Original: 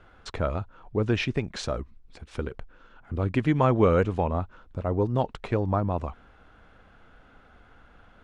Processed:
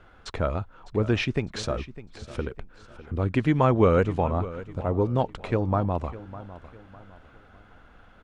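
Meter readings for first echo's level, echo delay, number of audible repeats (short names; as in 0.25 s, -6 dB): -16.0 dB, 0.604 s, 3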